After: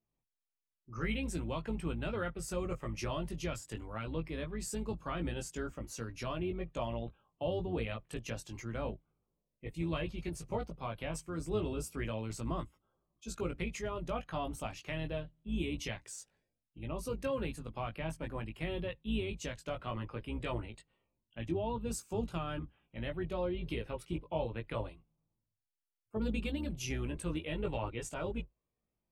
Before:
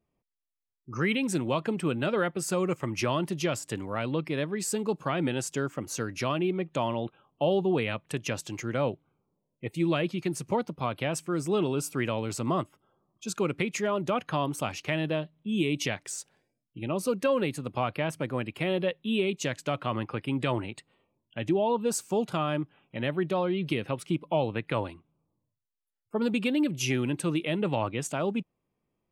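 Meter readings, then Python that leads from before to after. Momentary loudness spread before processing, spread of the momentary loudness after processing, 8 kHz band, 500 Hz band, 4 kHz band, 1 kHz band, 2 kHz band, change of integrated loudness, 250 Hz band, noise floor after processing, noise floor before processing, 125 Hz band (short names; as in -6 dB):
7 LU, 7 LU, -10.0 dB, -10.0 dB, -9.5 dB, -10.0 dB, -10.0 dB, -9.0 dB, -9.5 dB, under -85 dBFS, -83 dBFS, -6.5 dB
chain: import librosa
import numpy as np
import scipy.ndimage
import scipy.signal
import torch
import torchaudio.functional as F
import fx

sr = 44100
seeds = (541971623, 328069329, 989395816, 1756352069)

y = fx.octave_divider(x, sr, octaves=2, level_db=-4.0)
y = fx.chorus_voices(y, sr, voices=4, hz=0.13, base_ms=18, depth_ms=1.1, mix_pct=40)
y = y * 10.0 ** (-7.0 / 20.0)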